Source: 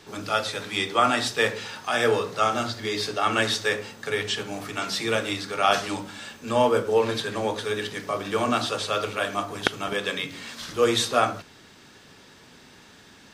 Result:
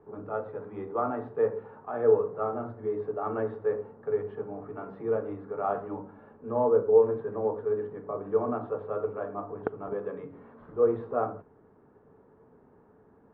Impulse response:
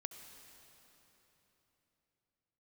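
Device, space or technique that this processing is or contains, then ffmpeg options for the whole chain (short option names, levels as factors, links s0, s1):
under water: -af "lowpass=f=1100:w=0.5412,lowpass=f=1100:w=1.3066,equalizer=f=440:t=o:w=0.22:g=10,volume=0.473"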